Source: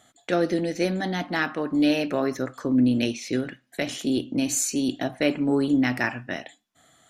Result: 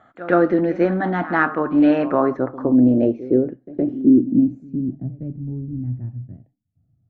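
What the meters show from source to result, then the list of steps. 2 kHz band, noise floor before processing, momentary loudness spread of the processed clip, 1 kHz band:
+1.5 dB, −67 dBFS, 15 LU, +8.0 dB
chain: low-pass filter sweep 1,300 Hz → 110 Hz, 0:02.00–0:05.45
echo ahead of the sound 115 ms −16 dB
dynamic equaliser 340 Hz, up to +3 dB, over −38 dBFS, Q 4.5
level +4.5 dB

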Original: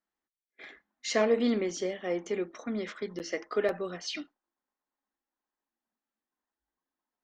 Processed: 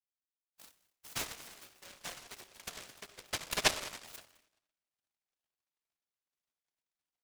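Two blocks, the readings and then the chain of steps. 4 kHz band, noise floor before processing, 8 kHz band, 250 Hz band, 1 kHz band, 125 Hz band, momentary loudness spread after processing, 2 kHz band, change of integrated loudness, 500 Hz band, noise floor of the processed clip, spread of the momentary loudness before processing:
+1.5 dB, below −85 dBFS, +2.5 dB, −21.0 dB, −3.5 dB, −7.0 dB, 22 LU, −2.0 dB, −6.0 dB, −18.0 dB, below −85 dBFS, 23 LU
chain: low-shelf EQ 250 Hz −11 dB
transient designer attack +7 dB, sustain −7 dB
formant filter a
high-shelf EQ 5,300 Hz −9 dB
single-tap delay 209 ms −22.5 dB
rectangular room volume 2,600 cubic metres, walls furnished, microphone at 1.3 metres
high-pass filter sweep 1,600 Hz → 690 Hz, 0:00.73–0:03.24
short delay modulated by noise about 2,100 Hz, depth 0.42 ms

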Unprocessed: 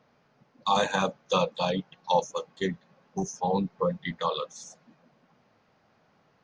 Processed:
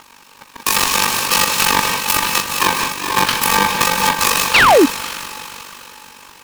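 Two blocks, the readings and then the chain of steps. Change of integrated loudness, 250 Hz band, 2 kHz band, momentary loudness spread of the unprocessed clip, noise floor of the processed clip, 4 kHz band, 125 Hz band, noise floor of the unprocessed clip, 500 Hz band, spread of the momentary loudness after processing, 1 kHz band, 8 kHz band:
+15.0 dB, +10.5 dB, +22.0 dB, 12 LU, −45 dBFS, +18.5 dB, +5.5 dB, −66 dBFS, +9.0 dB, 14 LU, +13.5 dB, +25.0 dB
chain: samples in bit-reversed order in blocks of 64 samples
downward compressor 3 to 1, threshold −30 dBFS, peak gain reduction 9.5 dB
octave-band graphic EQ 125/250/500/1,000/4,000/8,000 Hz −5/+8/−6/+6/+7/+6 dB
feedback delay with all-pass diffusion 474 ms, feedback 40%, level −8 dB
amplitude modulation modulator 48 Hz, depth 60%
three-way crossover with the lows and the highs turned down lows −23 dB, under 560 Hz, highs −16 dB, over 3,200 Hz
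reverb whose tail is shaped and stops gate 220 ms rising, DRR 8.5 dB
sound drawn into the spectrogram fall, 0:04.54–0:04.86, 250–3,000 Hz −41 dBFS
boost into a limiter +32.5 dB
short delay modulated by noise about 1,200 Hz, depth 0.042 ms

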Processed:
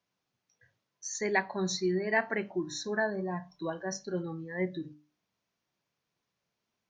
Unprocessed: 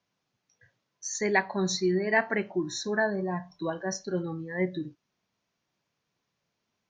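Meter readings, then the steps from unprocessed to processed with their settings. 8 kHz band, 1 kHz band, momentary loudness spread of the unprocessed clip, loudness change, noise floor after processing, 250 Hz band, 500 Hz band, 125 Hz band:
−3.5 dB, −3.5 dB, 9 LU, −3.5 dB, −85 dBFS, −4.0 dB, −3.5 dB, −4.0 dB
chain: mains-hum notches 50/100/150/200/250/300 Hz
level −3.5 dB

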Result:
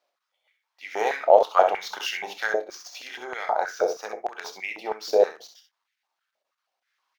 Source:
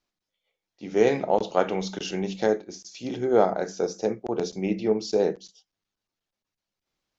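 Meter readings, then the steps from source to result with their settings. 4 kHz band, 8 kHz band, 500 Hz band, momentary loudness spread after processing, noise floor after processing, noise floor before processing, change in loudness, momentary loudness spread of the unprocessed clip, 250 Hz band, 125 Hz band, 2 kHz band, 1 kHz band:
+2.5 dB, can't be measured, +0.5 dB, 17 LU, −83 dBFS, below −85 dBFS, +1.0 dB, 10 LU, −16.0 dB, below −25 dB, +7.0 dB, +5.5 dB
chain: running median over 5 samples
in parallel at +1 dB: downward compressor, threshold −31 dBFS, peak gain reduction 16.5 dB
on the sum: ambience of single reflections 28 ms −16 dB, 65 ms −8.5 dB
high-pass on a step sequencer 6.3 Hz 600–2,000 Hz
level −2.5 dB

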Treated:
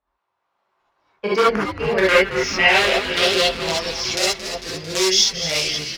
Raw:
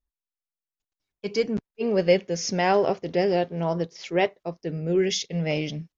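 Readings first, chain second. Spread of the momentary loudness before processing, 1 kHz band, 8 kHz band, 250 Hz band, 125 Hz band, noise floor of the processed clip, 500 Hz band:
9 LU, +6.0 dB, can't be measured, 0.0 dB, −3.5 dB, −76 dBFS, +3.0 dB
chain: running median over 5 samples
low-shelf EQ 300 Hz +9.5 dB
automatic gain control gain up to 8 dB
in parallel at −6 dB: wrap-around overflow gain 6 dB
on the sum: band-pass filter sweep 1,000 Hz → 5,400 Hz, 0:01.00–0:03.96
on a send: echo with shifted repeats 224 ms, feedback 64%, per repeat −150 Hz, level −12 dB
on the sum: reverb whose tail is shaped and stops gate 90 ms rising, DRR −7 dB
multiband upward and downward compressor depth 40%
level +4 dB

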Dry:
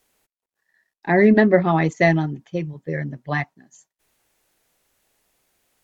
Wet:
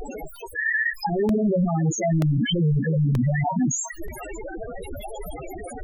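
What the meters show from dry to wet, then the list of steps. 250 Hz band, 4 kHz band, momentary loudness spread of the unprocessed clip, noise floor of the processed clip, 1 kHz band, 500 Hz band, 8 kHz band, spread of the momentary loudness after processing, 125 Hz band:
−2.5 dB, +8.0 dB, 15 LU, −40 dBFS, −4.0 dB, −6.5 dB, can't be measured, 15 LU, +3.5 dB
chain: sign of each sample alone
spectral peaks only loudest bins 4
regular buffer underruns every 0.93 s, samples 64, repeat, from 0:00.36
level +4.5 dB

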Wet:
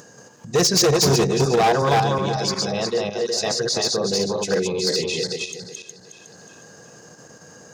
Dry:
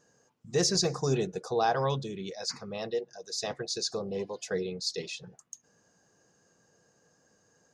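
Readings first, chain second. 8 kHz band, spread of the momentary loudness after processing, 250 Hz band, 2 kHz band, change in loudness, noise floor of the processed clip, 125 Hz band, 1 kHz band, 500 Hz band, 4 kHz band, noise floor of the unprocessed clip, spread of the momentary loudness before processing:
+11.5 dB, 9 LU, +11.5 dB, +12.5 dB, +11.5 dB, −47 dBFS, +11.0 dB, +11.5 dB, +11.5 dB, +11.5 dB, −69 dBFS, 13 LU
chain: feedback delay that plays each chunk backwards 182 ms, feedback 54%, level −1.5 dB
in parallel at +2.5 dB: output level in coarse steps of 13 dB
on the sum: gain into a clipping stage and back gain 19 dB
upward compression, threshold −42 dBFS
high-pass filter 74 Hz
level +5.5 dB

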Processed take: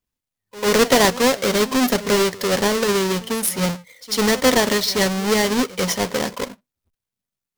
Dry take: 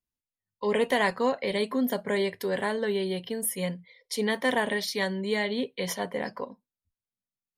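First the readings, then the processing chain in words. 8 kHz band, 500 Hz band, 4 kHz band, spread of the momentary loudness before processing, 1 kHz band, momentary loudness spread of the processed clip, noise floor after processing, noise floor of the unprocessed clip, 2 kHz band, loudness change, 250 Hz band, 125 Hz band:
+14.5 dB, +8.5 dB, +12.5 dB, 8 LU, +9.5 dB, 9 LU, below −85 dBFS, below −85 dBFS, +7.5 dB, +10.0 dB, +10.0 dB, +10.5 dB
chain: each half-wave held at its own peak
dynamic equaliser 5,500 Hz, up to +5 dB, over −43 dBFS, Q 1.1
backwards echo 96 ms −18 dB
level +4.5 dB

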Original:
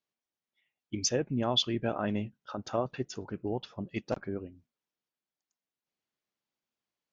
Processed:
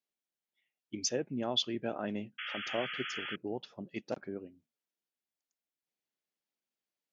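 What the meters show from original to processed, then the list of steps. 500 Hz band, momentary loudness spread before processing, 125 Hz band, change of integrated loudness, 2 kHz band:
−4.0 dB, 12 LU, −10.5 dB, −3.5 dB, +4.0 dB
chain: high-pass filter 180 Hz 12 dB per octave
parametric band 1,100 Hz −5 dB 0.6 octaves
sound drawn into the spectrogram noise, 0:02.38–0:03.36, 1,200–3,400 Hz −37 dBFS
level −3.5 dB

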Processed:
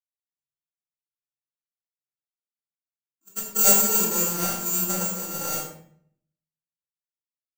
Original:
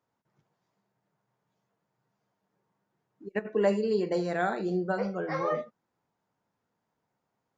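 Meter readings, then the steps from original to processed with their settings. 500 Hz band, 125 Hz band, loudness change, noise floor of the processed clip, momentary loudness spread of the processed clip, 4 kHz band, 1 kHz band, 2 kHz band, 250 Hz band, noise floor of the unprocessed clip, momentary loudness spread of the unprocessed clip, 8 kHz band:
−5.0 dB, +1.0 dB, +9.0 dB, below −85 dBFS, 16 LU, +14.5 dB, +1.0 dB, −0.5 dB, −1.0 dB, −82 dBFS, 10 LU, can't be measured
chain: samples sorted by size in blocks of 32 samples
low-shelf EQ 420 Hz +8 dB
bad sample-rate conversion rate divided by 6×, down none, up zero stuff
parametric band 260 Hz −3 dB 0.61 octaves
rectangular room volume 540 cubic metres, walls mixed, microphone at 2.2 metres
multiband upward and downward expander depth 100%
level −11 dB

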